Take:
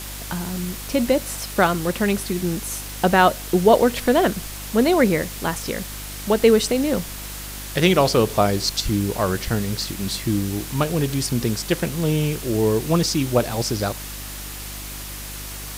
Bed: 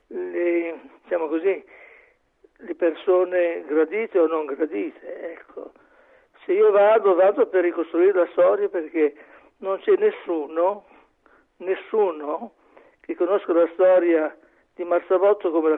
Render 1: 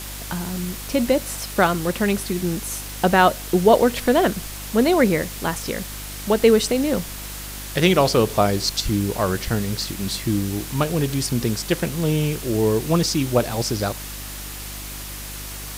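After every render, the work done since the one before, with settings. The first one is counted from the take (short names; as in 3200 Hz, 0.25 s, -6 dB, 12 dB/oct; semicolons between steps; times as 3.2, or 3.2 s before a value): nothing audible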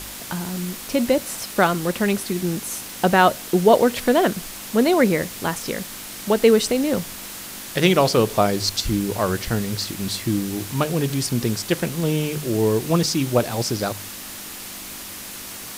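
de-hum 50 Hz, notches 3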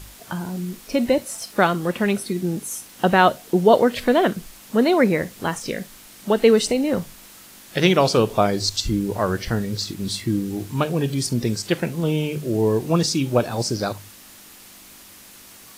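noise print and reduce 10 dB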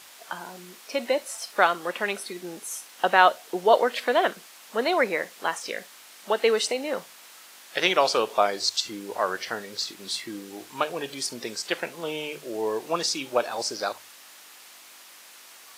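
HPF 630 Hz 12 dB/oct; high shelf 7600 Hz -7.5 dB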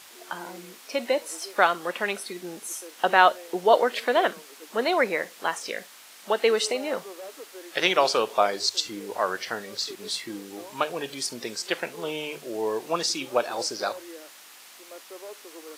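add bed -24.5 dB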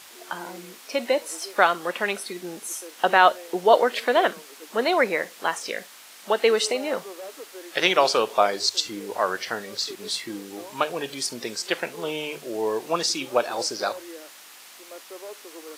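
gain +2 dB; limiter -3 dBFS, peak gain reduction 2 dB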